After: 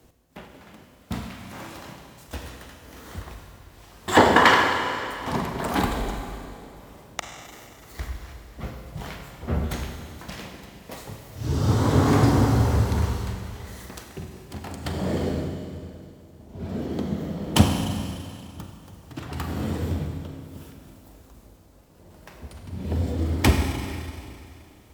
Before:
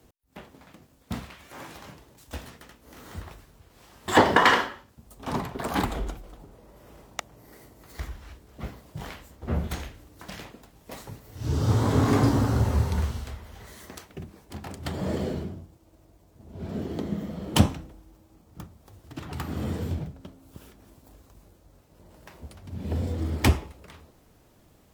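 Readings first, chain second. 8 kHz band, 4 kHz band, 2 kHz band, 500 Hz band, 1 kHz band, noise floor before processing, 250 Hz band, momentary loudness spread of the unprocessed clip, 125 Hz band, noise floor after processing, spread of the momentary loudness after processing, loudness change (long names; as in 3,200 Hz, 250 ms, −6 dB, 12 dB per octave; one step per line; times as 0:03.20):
+3.5 dB, +3.5 dB, +3.5 dB, +3.5 dB, +3.5 dB, −59 dBFS, +3.5 dB, 22 LU, +3.0 dB, −51 dBFS, 22 LU, +2.5 dB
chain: four-comb reverb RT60 2.5 s, combs from 33 ms, DRR 3.5 dB
level +2 dB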